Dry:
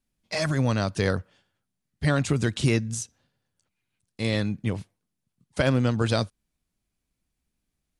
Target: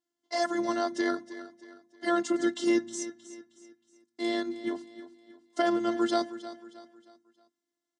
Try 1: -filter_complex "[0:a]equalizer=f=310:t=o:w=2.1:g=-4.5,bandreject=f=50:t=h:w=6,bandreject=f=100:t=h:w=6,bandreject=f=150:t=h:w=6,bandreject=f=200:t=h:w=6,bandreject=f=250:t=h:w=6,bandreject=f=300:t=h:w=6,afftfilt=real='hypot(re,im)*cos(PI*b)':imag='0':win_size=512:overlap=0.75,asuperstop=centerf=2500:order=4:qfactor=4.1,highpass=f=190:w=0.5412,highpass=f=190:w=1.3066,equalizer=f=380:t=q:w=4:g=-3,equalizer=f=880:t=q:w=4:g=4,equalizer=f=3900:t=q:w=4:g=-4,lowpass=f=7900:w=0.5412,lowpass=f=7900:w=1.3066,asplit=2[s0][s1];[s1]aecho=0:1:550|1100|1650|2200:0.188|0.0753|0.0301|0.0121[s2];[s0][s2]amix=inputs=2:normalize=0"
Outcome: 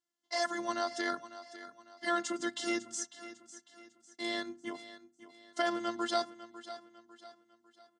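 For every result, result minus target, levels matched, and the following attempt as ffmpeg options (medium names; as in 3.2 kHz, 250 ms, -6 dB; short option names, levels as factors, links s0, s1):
echo 236 ms late; 250 Hz band -4.5 dB
-filter_complex "[0:a]equalizer=f=310:t=o:w=2.1:g=-4.5,bandreject=f=50:t=h:w=6,bandreject=f=100:t=h:w=6,bandreject=f=150:t=h:w=6,bandreject=f=200:t=h:w=6,bandreject=f=250:t=h:w=6,bandreject=f=300:t=h:w=6,afftfilt=real='hypot(re,im)*cos(PI*b)':imag='0':win_size=512:overlap=0.75,asuperstop=centerf=2500:order=4:qfactor=4.1,highpass=f=190:w=0.5412,highpass=f=190:w=1.3066,equalizer=f=380:t=q:w=4:g=-3,equalizer=f=880:t=q:w=4:g=4,equalizer=f=3900:t=q:w=4:g=-4,lowpass=f=7900:w=0.5412,lowpass=f=7900:w=1.3066,asplit=2[s0][s1];[s1]aecho=0:1:314|628|942|1256:0.188|0.0753|0.0301|0.0121[s2];[s0][s2]amix=inputs=2:normalize=0"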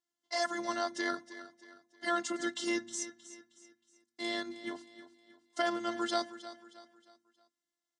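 250 Hz band -4.0 dB
-filter_complex "[0:a]equalizer=f=310:t=o:w=2.1:g=5.5,bandreject=f=50:t=h:w=6,bandreject=f=100:t=h:w=6,bandreject=f=150:t=h:w=6,bandreject=f=200:t=h:w=6,bandreject=f=250:t=h:w=6,bandreject=f=300:t=h:w=6,afftfilt=real='hypot(re,im)*cos(PI*b)':imag='0':win_size=512:overlap=0.75,asuperstop=centerf=2500:order=4:qfactor=4.1,highpass=f=190:w=0.5412,highpass=f=190:w=1.3066,equalizer=f=380:t=q:w=4:g=-3,equalizer=f=880:t=q:w=4:g=4,equalizer=f=3900:t=q:w=4:g=-4,lowpass=f=7900:w=0.5412,lowpass=f=7900:w=1.3066,asplit=2[s0][s1];[s1]aecho=0:1:314|628|942|1256:0.188|0.0753|0.0301|0.0121[s2];[s0][s2]amix=inputs=2:normalize=0"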